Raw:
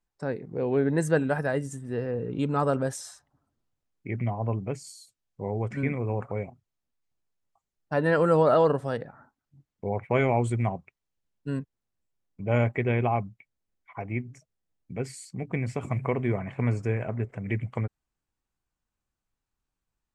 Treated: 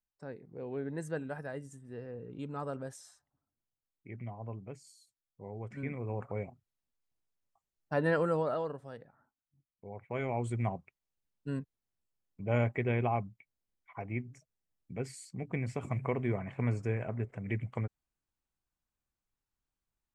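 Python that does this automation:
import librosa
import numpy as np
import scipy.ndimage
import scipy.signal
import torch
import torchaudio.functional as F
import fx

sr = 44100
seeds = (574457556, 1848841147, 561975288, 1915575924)

y = fx.gain(x, sr, db=fx.line((5.51, -13.5), (6.43, -5.0), (8.08, -5.0), (8.72, -16.5), (9.89, -16.5), (10.67, -5.5)))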